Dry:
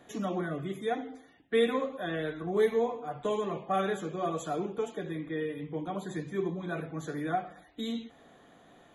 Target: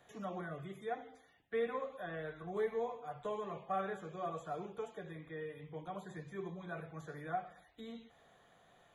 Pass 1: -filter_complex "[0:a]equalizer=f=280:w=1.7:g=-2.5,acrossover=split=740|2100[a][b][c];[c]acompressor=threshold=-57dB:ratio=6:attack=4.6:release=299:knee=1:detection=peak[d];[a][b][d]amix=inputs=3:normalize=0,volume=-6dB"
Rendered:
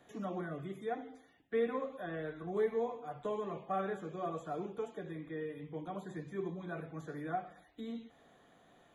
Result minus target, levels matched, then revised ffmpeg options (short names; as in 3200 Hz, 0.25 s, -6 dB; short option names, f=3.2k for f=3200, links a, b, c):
250 Hz band +3.0 dB
-filter_complex "[0:a]equalizer=f=280:w=1.7:g=-13,acrossover=split=740|2100[a][b][c];[c]acompressor=threshold=-57dB:ratio=6:attack=4.6:release=299:knee=1:detection=peak[d];[a][b][d]amix=inputs=3:normalize=0,volume=-6dB"